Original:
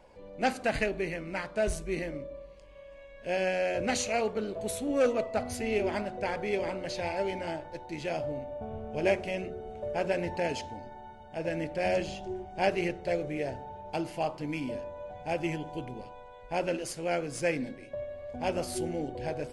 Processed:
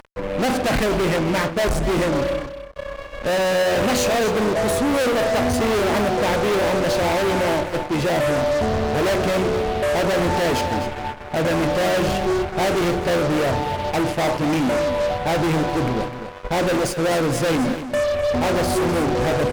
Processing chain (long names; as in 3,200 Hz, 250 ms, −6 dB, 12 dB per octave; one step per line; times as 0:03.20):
high-shelf EQ 2,400 Hz −11.5 dB
downward expander −38 dBFS
upward compression, threshold −37 dBFS
fuzz pedal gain 45 dB, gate −53 dBFS
on a send: single-tap delay 253 ms −11 dB
on the sum: level −5 dB